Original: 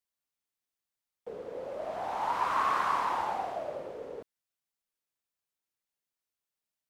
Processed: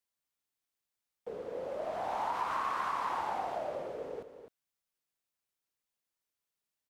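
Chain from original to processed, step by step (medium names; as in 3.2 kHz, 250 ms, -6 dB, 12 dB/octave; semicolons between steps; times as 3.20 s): compression, threshold -31 dBFS, peak gain reduction 7 dB; on a send: delay 256 ms -10 dB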